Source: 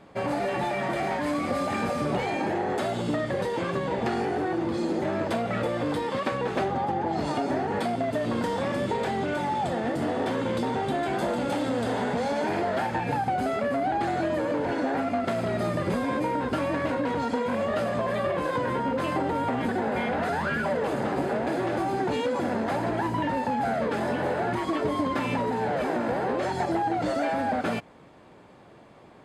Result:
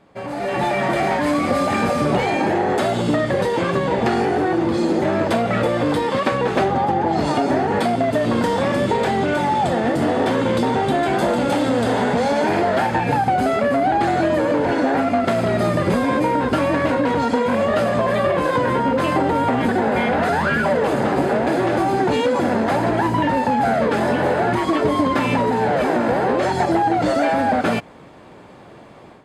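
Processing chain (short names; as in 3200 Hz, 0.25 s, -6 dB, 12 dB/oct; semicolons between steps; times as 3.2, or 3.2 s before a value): AGC gain up to 11.5 dB; gain -2.5 dB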